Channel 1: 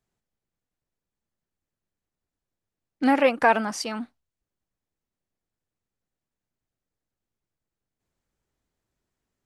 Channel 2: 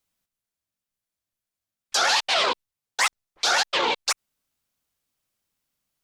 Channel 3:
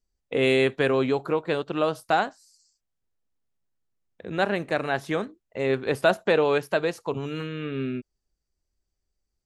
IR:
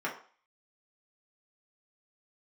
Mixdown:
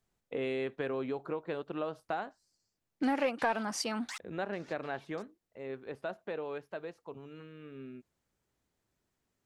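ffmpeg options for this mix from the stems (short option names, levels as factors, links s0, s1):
-filter_complex "[0:a]highpass=60,acontrast=49,volume=0.562[s0];[1:a]highpass=1200,acompressor=threshold=0.0355:ratio=5,alimiter=limit=0.0708:level=0:latency=1:release=204,adelay=1100,volume=0.447[s1];[2:a]lowpass=f=2000:p=1,equalizer=f=120:w=1.5:g=-4,volume=0.398,afade=t=out:st=4.86:d=0.63:silence=0.398107,asplit=2[s2][s3];[s3]apad=whole_len=314692[s4];[s1][s4]sidechaincompress=threshold=0.00224:ratio=4:attack=16:release=1020[s5];[s0][s5][s2]amix=inputs=3:normalize=0,acompressor=threshold=0.0224:ratio=2.5"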